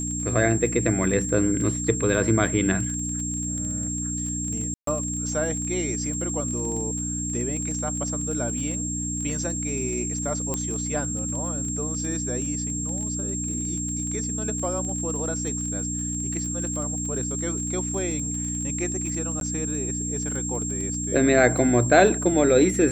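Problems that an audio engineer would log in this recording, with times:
surface crackle 21 per second −31 dBFS
mains hum 60 Hz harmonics 5 −31 dBFS
whistle 7,500 Hz −29 dBFS
0:04.74–0:04.87: drop-out 133 ms
0:10.54: click −13 dBFS
0:19.40–0:19.41: drop-out 12 ms

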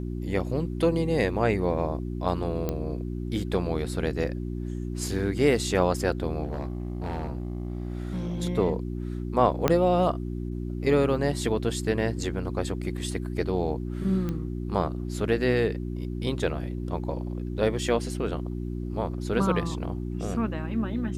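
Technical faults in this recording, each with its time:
mains hum 60 Hz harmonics 6 −32 dBFS
0:02.69: click −15 dBFS
0:06.43–0:08.42: clipping −26.5 dBFS
0:09.68: click −7 dBFS
0:14.29: click −19 dBFS

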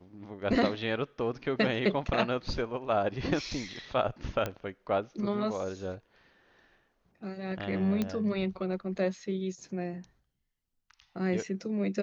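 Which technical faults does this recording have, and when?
0:04.46: click −18 dBFS
0:08.02: click −17 dBFS

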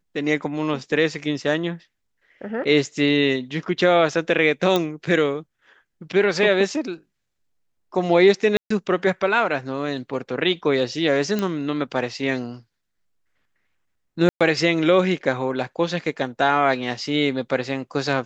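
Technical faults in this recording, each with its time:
0:04.76: click −8 dBFS
0:08.57–0:08.70: drop-out 134 ms
0:11.39: click −11 dBFS
0:14.29–0:14.41: drop-out 116 ms

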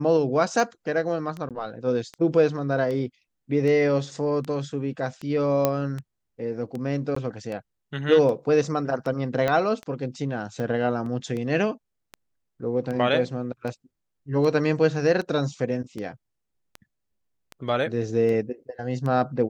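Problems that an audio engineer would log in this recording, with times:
scratch tick 78 rpm
0:01.49–0:01.51: drop-out 17 ms
0:05.65: click −7 dBFS
0:07.15–0:07.16: drop-out 14 ms
0:09.48: click −12 dBFS
0:11.06: drop-out 3.2 ms

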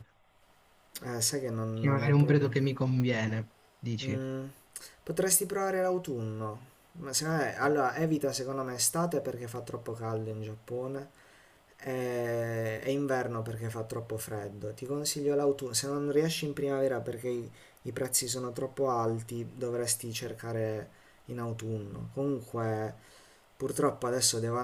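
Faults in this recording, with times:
0:03.00: click −21 dBFS

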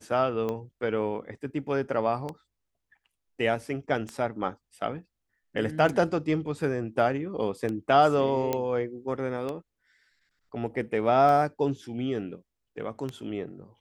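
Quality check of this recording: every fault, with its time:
scratch tick 33 1/3 rpm −20 dBFS
0:08.53: click −13 dBFS

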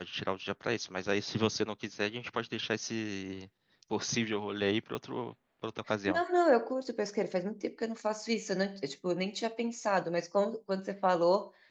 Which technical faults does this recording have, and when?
0:04.95: click −22 dBFS

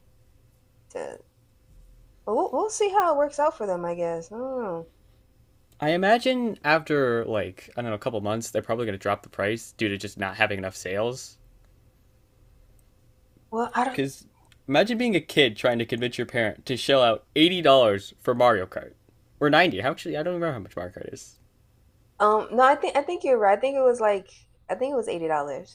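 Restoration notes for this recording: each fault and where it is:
0:03.00: click −11 dBFS

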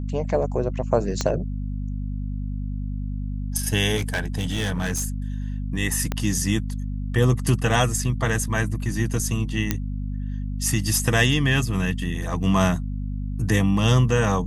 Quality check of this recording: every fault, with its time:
mains hum 50 Hz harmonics 5 −28 dBFS
0:01.21: click −10 dBFS
0:03.96–0:05.06: clipping −20.5 dBFS
0:06.12: click −11 dBFS
0:09.71: click −6 dBFS

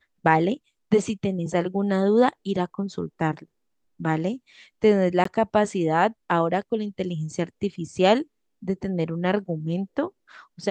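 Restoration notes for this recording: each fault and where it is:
0:05.24–0:05.25: drop-out 14 ms

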